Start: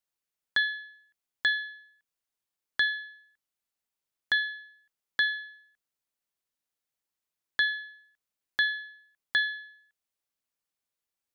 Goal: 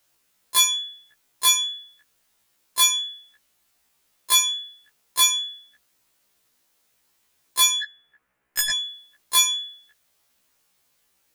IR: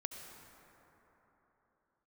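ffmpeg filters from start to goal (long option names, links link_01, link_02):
-filter_complex "[0:a]asettb=1/sr,asplit=3[link_01][link_02][link_03];[link_01]atrim=end=7.834[link_04];[link_02]atrim=start=7.83:end=8.7,asetpts=PTS-STARTPTS,afade=type=in:duration=0.004:curve=qsin,afade=type=out:start_time=0.866:duration=0.004:curve=qsin,highshelf=frequency=2800:width_type=q:width=1.5:gain=-14[link_05];[link_03]atrim=start=8.696[link_06];[link_04][link_05]acrossfade=duration=0.004:curve1=hsin:curve2=qsin[link_07];[link_07][link_06]acrossfade=duration=0.004:curve1=qsin:curve2=hsin,aeval=exprs='0.178*sin(PI/2*5.62*val(0)/0.178)':channel_layout=same,afftfilt=real='re*1.73*eq(mod(b,3),0)':imag='im*1.73*eq(mod(b,3),0)':win_size=2048:overlap=0.75,volume=4dB"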